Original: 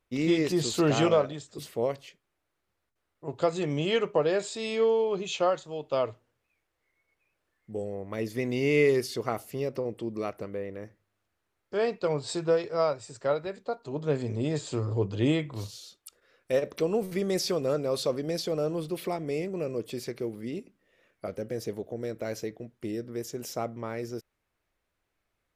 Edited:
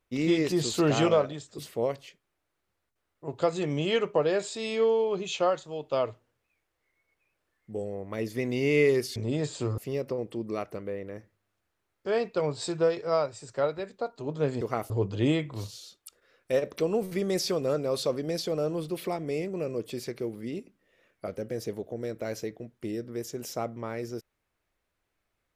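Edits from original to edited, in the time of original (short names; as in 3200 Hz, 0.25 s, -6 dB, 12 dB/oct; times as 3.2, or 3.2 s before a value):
9.16–9.45 swap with 14.28–14.9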